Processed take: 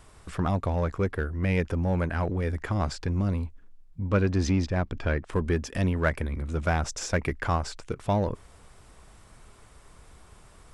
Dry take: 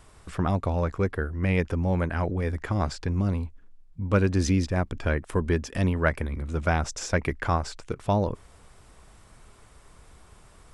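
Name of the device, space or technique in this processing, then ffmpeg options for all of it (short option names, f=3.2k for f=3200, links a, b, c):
parallel distortion: -filter_complex "[0:a]asplit=2[a][b];[b]asoftclip=type=hard:threshold=-26.5dB,volume=-7dB[c];[a][c]amix=inputs=2:normalize=0,asettb=1/sr,asplit=3[d][e][f];[d]atrim=end=4.104[g];[e]atrim=start=4.1:end=5.33,asetpts=PTS-STARTPTS,afade=t=in:d=0.004:c=qsin,afade=t=out:st=1.226:d=0.004:c=qsin,lowpass=5.8k[h];[f]atrim=start=5.326[i];[g][h]acrossfade=d=0.004:c1=hsin:c2=qsin[j];[j][i]acrossfade=d=0.004:c1=qsin:c2=hsin,volume=-3dB"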